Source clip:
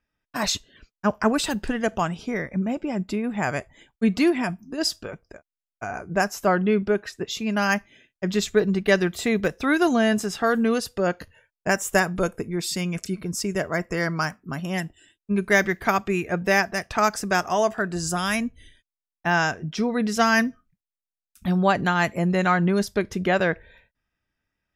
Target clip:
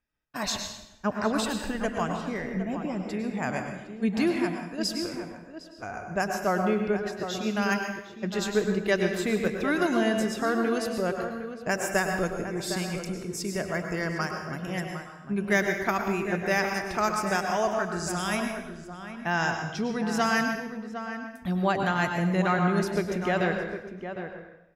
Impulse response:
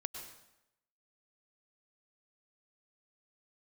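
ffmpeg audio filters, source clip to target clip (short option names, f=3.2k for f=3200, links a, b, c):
-filter_complex "[0:a]asplit=2[a][b];[b]adelay=758,volume=-9dB,highshelf=f=4k:g=-17.1[c];[a][c]amix=inputs=2:normalize=0[d];[1:a]atrim=start_sample=2205[e];[d][e]afir=irnorm=-1:irlink=0,volume=-3.5dB"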